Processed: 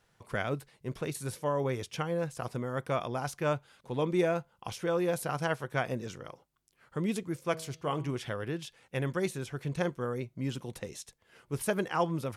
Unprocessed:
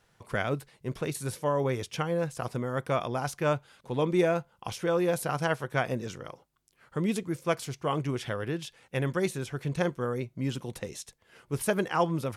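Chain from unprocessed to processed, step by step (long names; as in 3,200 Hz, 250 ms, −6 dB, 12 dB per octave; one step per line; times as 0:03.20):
0:07.39–0:08.18: hum removal 160.9 Hz, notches 29
level −3 dB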